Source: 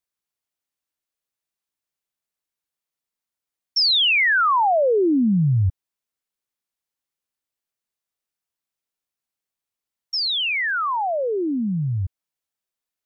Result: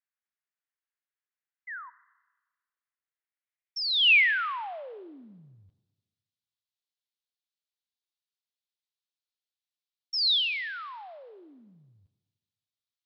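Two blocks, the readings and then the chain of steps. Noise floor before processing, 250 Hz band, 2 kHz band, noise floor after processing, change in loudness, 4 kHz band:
under -85 dBFS, -31.0 dB, -4.5 dB, under -85 dBFS, -4.0 dB, -5.0 dB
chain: painted sound fall, 1.67–1.9, 930–2100 Hz -37 dBFS; Schroeder reverb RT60 1.3 s, combs from 30 ms, DRR 17.5 dB; band-pass sweep 1700 Hz -> 3800 Hz, 3.07–5.24

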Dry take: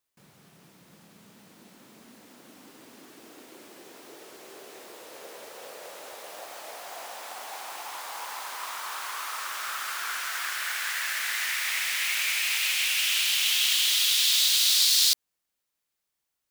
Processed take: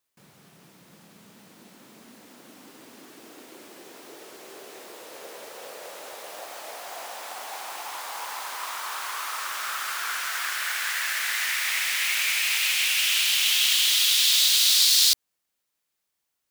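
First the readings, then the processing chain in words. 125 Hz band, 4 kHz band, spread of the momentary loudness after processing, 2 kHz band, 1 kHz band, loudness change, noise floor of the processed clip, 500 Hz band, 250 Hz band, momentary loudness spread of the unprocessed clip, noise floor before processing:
n/a, +2.5 dB, 22 LU, +2.5 dB, +2.5 dB, +2.5 dB, -80 dBFS, +2.5 dB, +2.0 dB, 22 LU, -83 dBFS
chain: low shelf 80 Hz -5 dB; gain +2.5 dB

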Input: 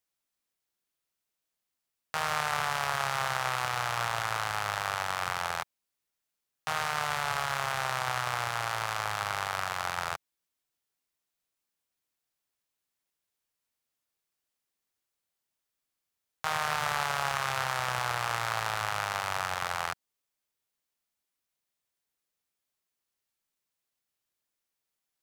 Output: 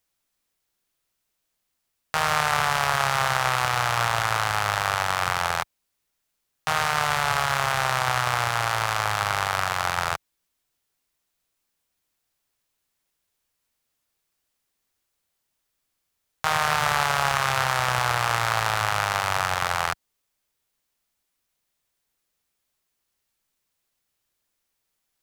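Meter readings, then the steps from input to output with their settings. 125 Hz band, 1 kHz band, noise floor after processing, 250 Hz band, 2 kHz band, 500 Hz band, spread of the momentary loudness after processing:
+10.0 dB, +7.5 dB, -78 dBFS, +9.0 dB, +7.5 dB, +7.5 dB, 5 LU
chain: low shelf 74 Hz +8.5 dB; gain +7.5 dB

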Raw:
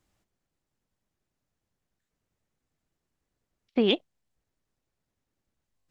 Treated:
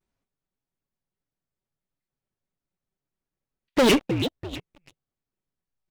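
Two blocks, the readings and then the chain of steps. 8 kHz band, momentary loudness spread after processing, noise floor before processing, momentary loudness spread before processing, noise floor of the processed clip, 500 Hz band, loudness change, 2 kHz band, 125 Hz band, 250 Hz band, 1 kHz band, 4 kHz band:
n/a, 18 LU, -85 dBFS, 6 LU, under -85 dBFS, +5.5 dB, +4.5 dB, +10.0 dB, +11.5 dB, +6.0 dB, +14.0 dB, +4.5 dB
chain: high shelf 4200 Hz -6 dB; comb 6.1 ms, depth 49%; frequency-shifting echo 0.324 s, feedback 38%, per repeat -72 Hz, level -21 dB; soft clip -15 dBFS, distortion -22 dB; sample leveller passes 5; shaped vibrato square 4.5 Hz, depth 250 cents; gain +1.5 dB

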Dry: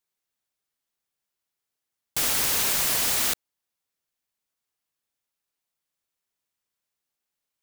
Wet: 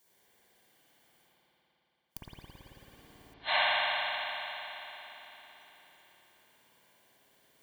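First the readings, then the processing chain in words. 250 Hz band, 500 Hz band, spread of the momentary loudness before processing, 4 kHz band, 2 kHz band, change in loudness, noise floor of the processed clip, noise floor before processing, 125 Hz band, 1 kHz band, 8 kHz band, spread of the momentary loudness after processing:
-15.0 dB, -1.0 dB, 8 LU, -4.5 dB, +1.0 dB, -10.0 dB, -76 dBFS, -85 dBFS, -11.5 dB, +2.0 dB, under -35 dB, 23 LU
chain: spectral repair 2.62–3.55, 580–4200 Hz before; RIAA curve recording; spectral noise reduction 14 dB; soft clip -11 dBFS, distortion -9 dB; reverse; upward compressor, threshold -37 dBFS; reverse; flipped gate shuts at -17 dBFS, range -41 dB; tilt -4 dB/oct; notch comb 1300 Hz; spring tank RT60 4 s, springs 55 ms, chirp 30 ms, DRR -9 dB; gain +4.5 dB

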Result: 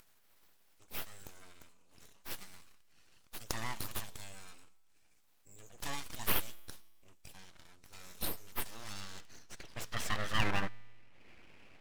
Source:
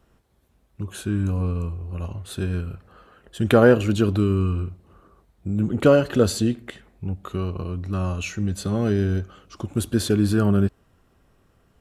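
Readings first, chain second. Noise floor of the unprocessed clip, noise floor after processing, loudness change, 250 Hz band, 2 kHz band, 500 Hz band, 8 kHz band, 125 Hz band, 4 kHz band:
-62 dBFS, -66 dBFS, -17.0 dB, -27.5 dB, -9.5 dB, -28.0 dB, -8.5 dB, -24.5 dB, -7.5 dB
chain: bin magnitudes rounded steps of 15 dB; upward compressor, threshold -41 dBFS; band-pass sweep 6900 Hz -> 1200 Hz, 8.49–10.56; full-wave rectifier; resonator 110 Hz, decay 1.4 s, harmonics all, mix 40%; gain +11 dB

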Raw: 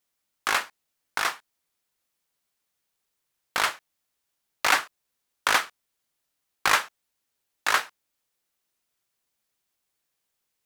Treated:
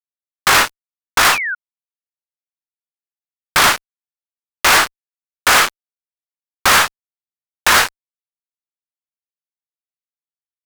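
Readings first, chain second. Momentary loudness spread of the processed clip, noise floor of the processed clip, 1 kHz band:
9 LU, under -85 dBFS, +11.5 dB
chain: fuzz box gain 38 dB, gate -44 dBFS; sample leveller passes 1; painted sound fall, 1.32–1.55, 1400–2800 Hz -24 dBFS; gain +3 dB

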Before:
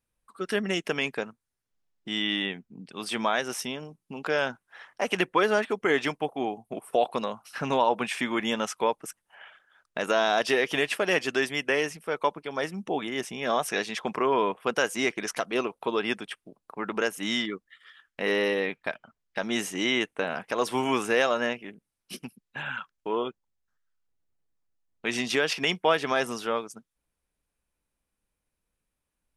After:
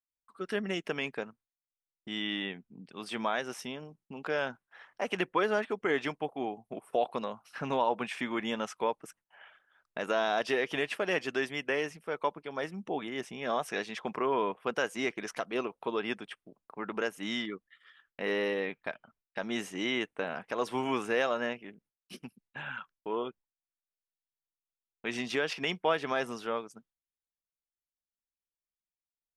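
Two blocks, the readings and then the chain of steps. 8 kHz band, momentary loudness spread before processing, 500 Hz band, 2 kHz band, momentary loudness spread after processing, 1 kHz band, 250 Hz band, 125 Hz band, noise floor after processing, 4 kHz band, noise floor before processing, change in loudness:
-11.0 dB, 14 LU, -5.0 dB, -6.0 dB, 14 LU, -5.5 dB, -5.0 dB, -5.0 dB, under -85 dBFS, -7.5 dB, -84 dBFS, -5.5 dB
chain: high shelf 5200 Hz -9 dB; gate with hold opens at -57 dBFS; gain -5 dB

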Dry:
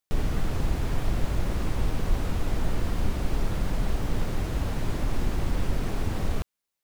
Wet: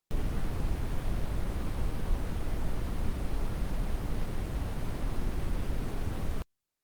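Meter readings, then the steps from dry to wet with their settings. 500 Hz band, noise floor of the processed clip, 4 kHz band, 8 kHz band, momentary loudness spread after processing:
-6.5 dB, -85 dBFS, -8.0 dB, -7.0 dB, 2 LU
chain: gain -5 dB; Opus 32 kbps 48000 Hz

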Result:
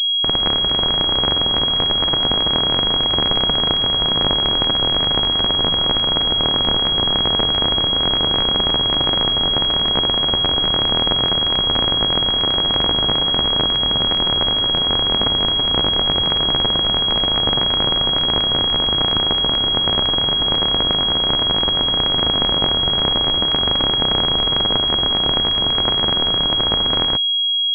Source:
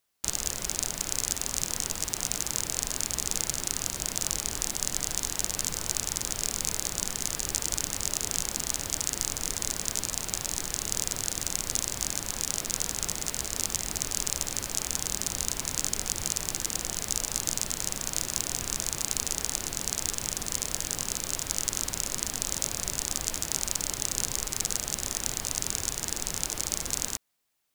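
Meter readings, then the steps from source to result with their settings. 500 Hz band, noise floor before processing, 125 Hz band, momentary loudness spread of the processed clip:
+18.0 dB, -40 dBFS, +14.0 dB, 0 LU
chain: AGC; pulse-width modulation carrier 3300 Hz; gain +7 dB

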